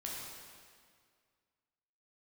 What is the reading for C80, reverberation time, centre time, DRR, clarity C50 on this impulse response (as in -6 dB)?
1.0 dB, 2.0 s, 113 ms, -4.5 dB, -1.0 dB